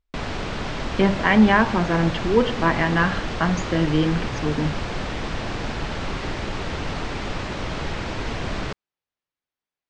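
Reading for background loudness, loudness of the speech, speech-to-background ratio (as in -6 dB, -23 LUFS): -29.0 LUFS, -21.0 LUFS, 8.0 dB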